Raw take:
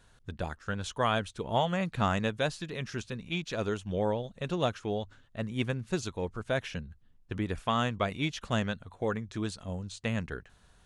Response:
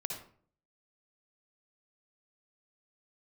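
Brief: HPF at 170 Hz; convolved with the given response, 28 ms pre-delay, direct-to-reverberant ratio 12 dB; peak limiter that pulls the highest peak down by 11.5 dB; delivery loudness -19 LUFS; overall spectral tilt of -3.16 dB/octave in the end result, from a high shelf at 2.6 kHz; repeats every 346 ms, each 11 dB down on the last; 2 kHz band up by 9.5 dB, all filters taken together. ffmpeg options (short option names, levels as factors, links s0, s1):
-filter_complex "[0:a]highpass=170,equalizer=f=2000:t=o:g=8.5,highshelf=f=2600:g=9,alimiter=limit=0.112:level=0:latency=1,aecho=1:1:346|692|1038:0.282|0.0789|0.0221,asplit=2[s0][s1];[1:a]atrim=start_sample=2205,adelay=28[s2];[s1][s2]afir=irnorm=-1:irlink=0,volume=0.237[s3];[s0][s3]amix=inputs=2:normalize=0,volume=5.01"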